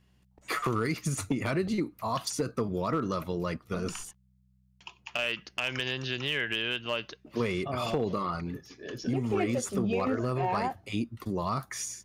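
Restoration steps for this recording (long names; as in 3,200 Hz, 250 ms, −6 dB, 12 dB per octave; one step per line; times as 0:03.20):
clipped peaks rebuilt −20 dBFS
hum removal 63.2 Hz, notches 3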